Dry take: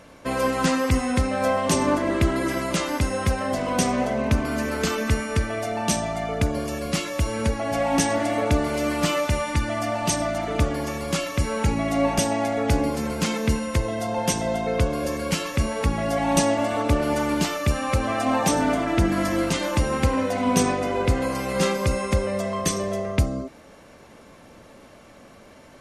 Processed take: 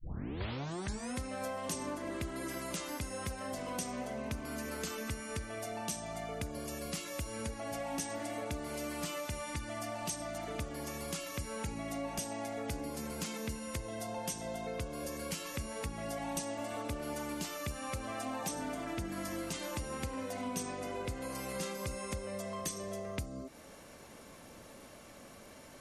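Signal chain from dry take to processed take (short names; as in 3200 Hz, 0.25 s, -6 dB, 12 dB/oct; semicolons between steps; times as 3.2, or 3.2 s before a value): tape start at the beginning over 1.14 s; high shelf 6100 Hz +12 dB; compressor 3:1, threshold -34 dBFS, peak gain reduction 16 dB; gain -6 dB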